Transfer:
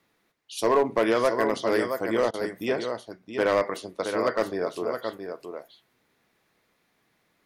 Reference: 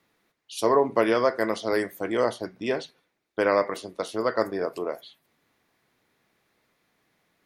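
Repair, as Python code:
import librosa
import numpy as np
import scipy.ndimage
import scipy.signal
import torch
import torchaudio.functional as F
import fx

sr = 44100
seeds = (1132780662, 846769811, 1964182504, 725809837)

y = fx.fix_declip(x, sr, threshold_db=-14.5)
y = fx.fix_interpolate(y, sr, at_s=(2.31,), length_ms=26.0)
y = fx.fix_echo_inverse(y, sr, delay_ms=670, level_db=-7.5)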